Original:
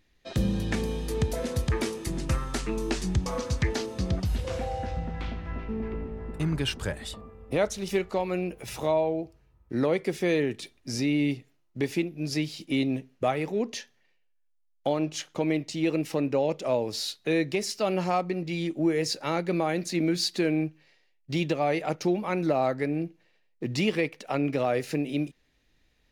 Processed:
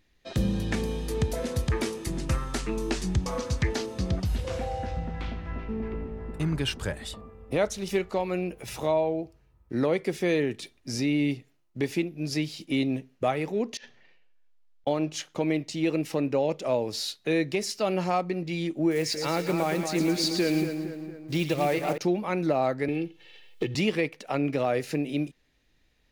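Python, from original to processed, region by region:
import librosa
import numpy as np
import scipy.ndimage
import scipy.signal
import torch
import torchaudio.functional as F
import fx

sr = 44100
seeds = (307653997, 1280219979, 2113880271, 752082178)

y = fx.chain(x, sr, fx.lowpass(hz=4300.0, slope=12),
    fx.over_compress(threshold_db=-53.0, ratio=-1.0), at=(13.77, 14.87))
y = fx.chain(y, sr, fx.block_float(bits=5),
    fx.echo_split(split_hz=1800.0, low_ms=231, high_ms=112, feedback_pct=52, wet_db=-7), at=(18.91, 21.98))
y = fx.chain(y, sr, fx.peak_eq(hz=3200.0, db=14.5, octaves=0.73),
    fx.comb(ms=2.3, depth=0.65),
    fx.band_squash(depth_pct=100), at=(22.88, 23.75))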